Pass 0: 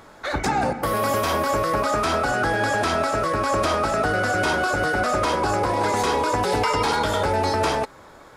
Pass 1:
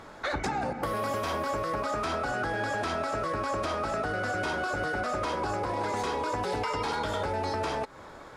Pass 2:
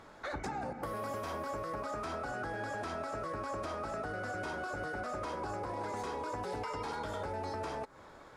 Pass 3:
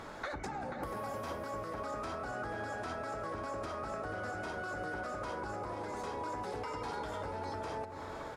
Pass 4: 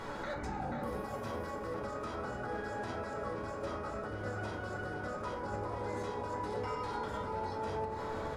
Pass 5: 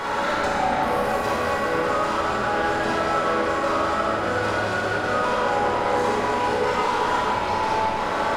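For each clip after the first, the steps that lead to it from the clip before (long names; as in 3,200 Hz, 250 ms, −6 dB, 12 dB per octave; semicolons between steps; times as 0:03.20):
high-shelf EQ 10,000 Hz −11.5 dB; downward compressor 6 to 1, threshold −28 dBFS, peak gain reduction 10 dB
dynamic equaliser 3,300 Hz, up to −5 dB, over −49 dBFS, Q 0.93; level −7.5 dB
downward compressor 12 to 1, threshold −45 dBFS, peak gain reduction 11.5 dB; slap from a distant wall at 83 metres, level −6 dB; level +8 dB
brickwall limiter −36 dBFS, peak gain reduction 8.5 dB; surface crackle 74 per second −59 dBFS; convolution reverb RT60 0.60 s, pre-delay 7 ms, DRR −0.5 dB
mid-hump overdrive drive 20 dB, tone 2,500 Hz, clips at −25.5 dBFS; high-shelf EQ 6,700 Hz +8.5 dB; four-comb reverb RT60 1.8 s, combs from 33 ms, DRR −3 dB; level +6.5 dB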